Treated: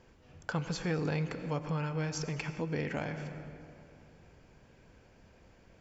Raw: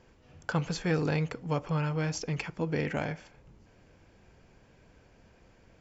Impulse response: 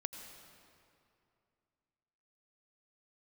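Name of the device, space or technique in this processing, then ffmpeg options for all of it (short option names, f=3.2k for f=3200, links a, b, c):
ducked reverb: -filter_complex "[0:a]asplit=3[a][b][c];[1:a]atrim=start_sample=2205[d];[b][d]afir=irnorm=-1:irlink=0[e];[c]apad=whole_len=255876[f];[e][f]sidechaincompress=threshold=-33dB:ratio=8:attack=12:release=178,volume=4.5dB[g];[a][g]amix=inputs=2:normalize=0,volume=-8dB"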